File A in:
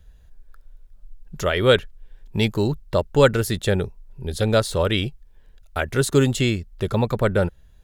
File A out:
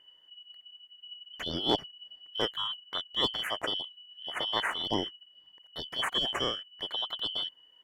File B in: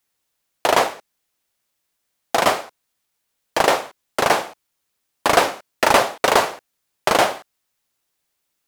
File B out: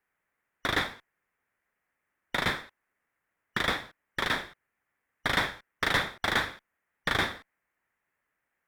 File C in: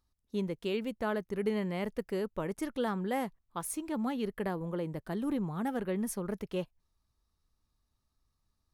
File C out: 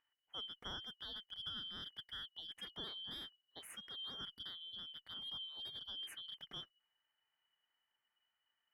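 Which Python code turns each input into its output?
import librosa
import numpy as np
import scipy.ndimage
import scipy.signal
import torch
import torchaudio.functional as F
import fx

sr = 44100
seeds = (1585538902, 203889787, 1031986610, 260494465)

y = fx.band_shuffle(x, sr, order='3412')
y = fx.high_shelf_res(y, sr, hz=2800.0, db=-14.0, q=3.0)
y = fx.clip_asym(y, sr, top_db=-16.0, bottom_db=-12.5)
y = F.gain(torch.from_numpy(y), -2.0).numpy()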